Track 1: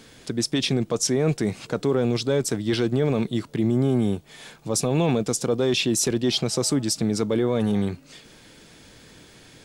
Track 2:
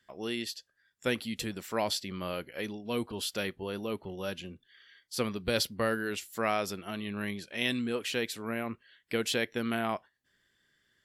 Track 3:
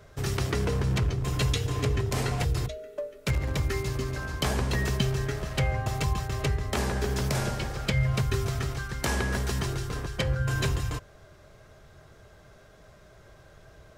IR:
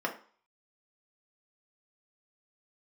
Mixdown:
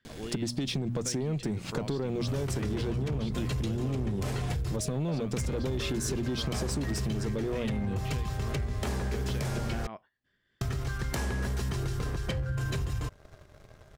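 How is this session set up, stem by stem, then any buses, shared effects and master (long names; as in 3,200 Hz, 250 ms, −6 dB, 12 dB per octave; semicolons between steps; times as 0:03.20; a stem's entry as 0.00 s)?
−4.0 dB, 0.05 s, bus A, no send, low-shelf EQ 160 Hz +9 dB; mains-hum notches 60/120/180/240 Hz; downward compressor 2 to 1, threshold −22 dBFS, peak gain reduction 5.5 dB
+1.5 dB, 0.00 s, no bus, no send, low-pass filter 3,900 Hz 12 dB per octave; downward compressor 3 to 1, threshold −37 dBFS, peak gain reduction 10 dB; amplitude modulation by smooth noise, depth 65%
−3.5 dB, 2.10 s, muted 0:09.87–0:10.61, bus A, no send, no processing
bus A: 0.0 dB, leveller curve on the samples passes 2; downward compressor 2 to 1, threshold −33 dBFS, peak gain reduction 9 dB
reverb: not used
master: low-shelf EQ 330 Hz +5 dB; downward compressor, threshold −28 dBFS, peak gain reduction 7 dB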